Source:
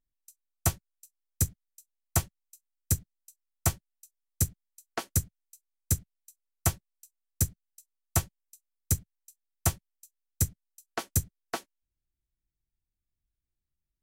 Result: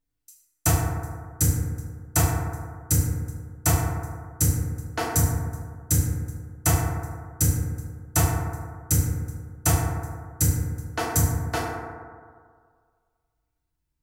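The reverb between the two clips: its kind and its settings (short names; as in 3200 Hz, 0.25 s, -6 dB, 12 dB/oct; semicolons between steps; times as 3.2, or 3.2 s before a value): FDN reverb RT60 1.9 s, low-frequency decay 0.9×, high-frequency decay 0.3×, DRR -7 dB; gain +1 dB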